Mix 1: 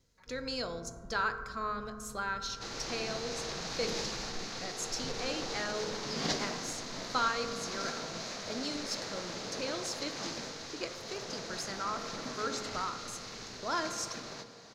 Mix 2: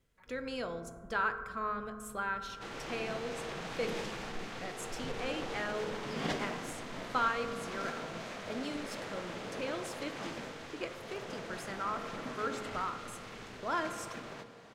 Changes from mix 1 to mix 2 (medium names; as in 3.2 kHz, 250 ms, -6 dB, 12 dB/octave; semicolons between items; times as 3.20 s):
first sound -5.5 dB; master: add high-order bell 5.2 kHz -12.5 dB 1 oct